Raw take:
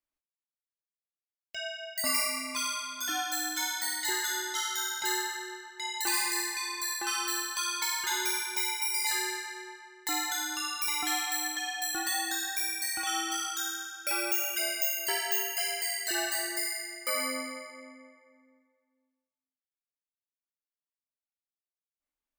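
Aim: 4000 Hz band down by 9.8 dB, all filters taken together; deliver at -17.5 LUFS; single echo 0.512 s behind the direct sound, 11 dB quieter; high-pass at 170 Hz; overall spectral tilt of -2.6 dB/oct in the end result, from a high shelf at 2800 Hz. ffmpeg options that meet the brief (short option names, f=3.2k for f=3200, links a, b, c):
-af "highpass=170,highshelf=f=2.8k:g=-5,equalizer=f=4k:t=o:g=-8.5,aecho=1:1:512:0.282,volume=17dB"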